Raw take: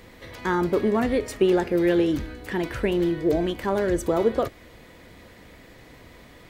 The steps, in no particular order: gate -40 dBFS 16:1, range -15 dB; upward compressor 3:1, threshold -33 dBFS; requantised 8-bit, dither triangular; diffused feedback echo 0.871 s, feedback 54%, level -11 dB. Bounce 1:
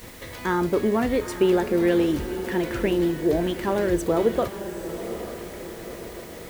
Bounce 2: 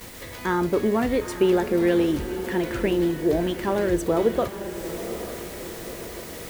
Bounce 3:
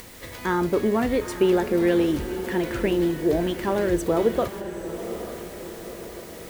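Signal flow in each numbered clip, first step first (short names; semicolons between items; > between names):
upward compressor > gate > diffused feedback echo > requantised; requantised > upward compressor > diffused feedback echo > gate; requantised > gate > upward compressor > diffused feedback echo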